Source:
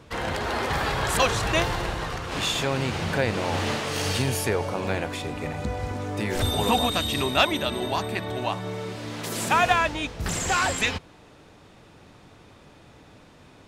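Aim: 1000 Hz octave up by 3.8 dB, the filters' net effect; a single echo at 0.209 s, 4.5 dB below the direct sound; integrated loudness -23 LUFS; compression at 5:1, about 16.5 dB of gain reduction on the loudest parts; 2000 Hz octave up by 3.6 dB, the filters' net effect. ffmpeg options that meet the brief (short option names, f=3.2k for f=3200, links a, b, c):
-af "equalizer=f=1k:t=o:g=4,equalizer=f=2k:t=o:g=3.5,acompressor=threshold=-32dB:ratio=5,aecho=1:1:209:0.596,volume=10dB"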